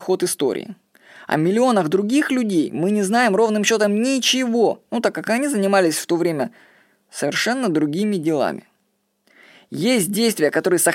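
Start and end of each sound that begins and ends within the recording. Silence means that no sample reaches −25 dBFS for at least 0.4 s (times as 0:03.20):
0:01.29–0:06.47
0:07.16–0:08.59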